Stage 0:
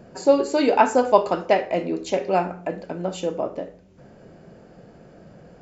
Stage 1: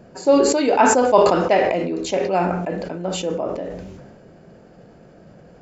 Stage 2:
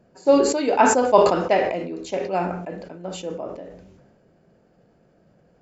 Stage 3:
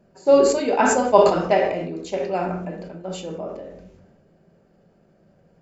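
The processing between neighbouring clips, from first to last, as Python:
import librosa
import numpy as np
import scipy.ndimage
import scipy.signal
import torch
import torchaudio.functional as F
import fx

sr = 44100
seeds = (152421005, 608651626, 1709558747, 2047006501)

y1 = fx.sustainer(x, sr, db_per_s=34.0)
y2 = fx.upward_expand(y1, sr, threshold_db=-34.0, expansion=1.5)
y3 = fx.room_shoebox(y2, sr, seeds[0], volume_m3=580.0, walls='furnished', distance_m=1.2)
y3 = F.gain(torch.from_numpy(y3), -1.5).numpy()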